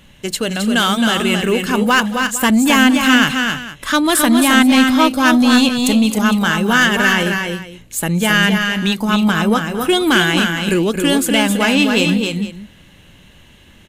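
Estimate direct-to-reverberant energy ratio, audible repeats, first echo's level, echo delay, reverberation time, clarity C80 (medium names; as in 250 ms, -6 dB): no reverb, 4, -20.0 dB, 223 ms, no reverb, no reverb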